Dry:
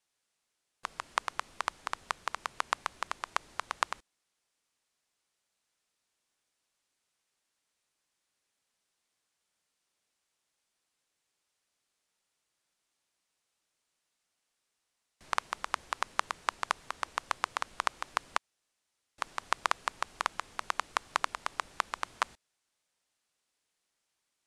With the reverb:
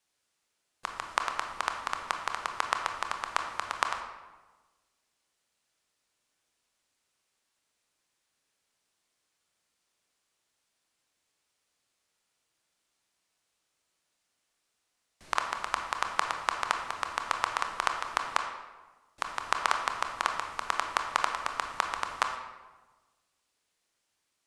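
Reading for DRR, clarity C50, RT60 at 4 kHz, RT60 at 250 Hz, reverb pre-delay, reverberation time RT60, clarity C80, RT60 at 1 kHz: 4.0 dB, 6.0 dB, 0.80 s, 1.5 s, 22 ms, 1.3 s, 8.0 dB, 1.2 s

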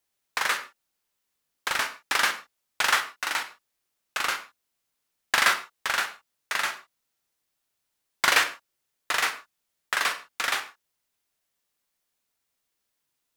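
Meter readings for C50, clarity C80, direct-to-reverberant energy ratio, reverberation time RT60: 12.5 dB, 16.0 dB, 7.5 dB, non-exponential decay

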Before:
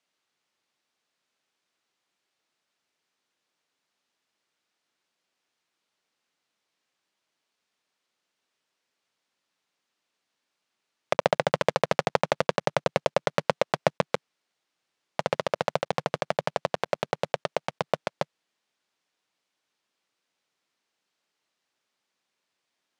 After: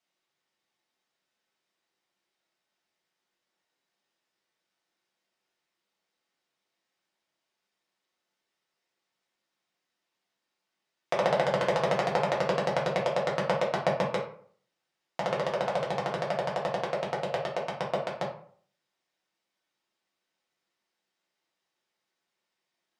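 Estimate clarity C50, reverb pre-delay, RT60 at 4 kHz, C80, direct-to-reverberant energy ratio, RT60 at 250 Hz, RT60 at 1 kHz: 6.5 dB, 3 ms, 0.30 s, 11.0 dB, −4.5 dB, 0.60 s, 0.50 s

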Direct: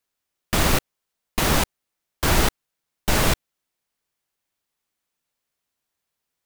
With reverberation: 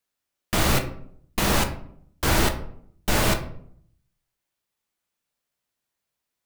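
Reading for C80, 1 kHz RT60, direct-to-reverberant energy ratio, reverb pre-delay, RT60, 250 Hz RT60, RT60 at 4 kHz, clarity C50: 14.5 dB, 0.60 s, 5.0 dB, 7 ms, 0.65 s, 0.80 s, 0.35 s, 10.5 dB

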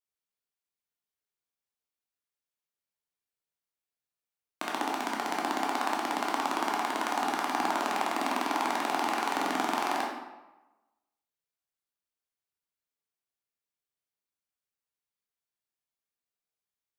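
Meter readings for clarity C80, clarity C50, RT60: 4.5 dB, 1.5 dB, 1.1 s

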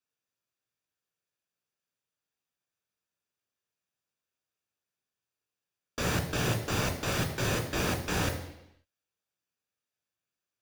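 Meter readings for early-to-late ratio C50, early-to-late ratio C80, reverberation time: 9.0 dB, 11.0 dB, 0.85 s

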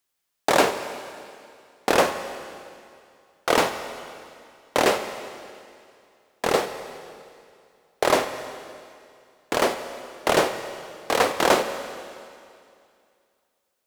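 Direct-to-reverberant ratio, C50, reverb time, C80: 8.5 dB, 9.5 dB, 2.4 s, 10.0 dB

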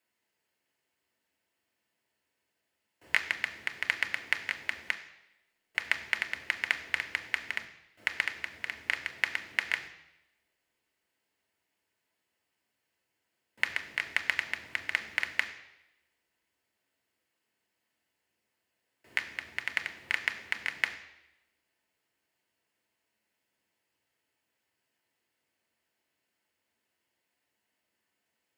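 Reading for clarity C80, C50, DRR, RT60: 13.5 dB, 11.5 dB, 5.5 dB, 0.90 s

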